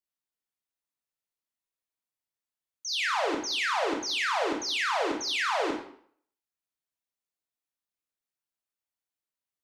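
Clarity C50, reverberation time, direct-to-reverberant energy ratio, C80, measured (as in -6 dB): 5.0 dB, 0.60 s, 0.0 dB, 8.5 dB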